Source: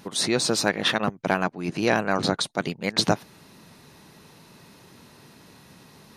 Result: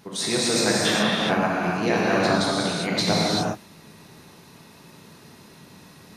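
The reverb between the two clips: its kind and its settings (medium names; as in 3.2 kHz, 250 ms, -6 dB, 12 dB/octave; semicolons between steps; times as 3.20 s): gated-style reverb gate 430 ms flat, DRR -6 dB; trim -4.5 dB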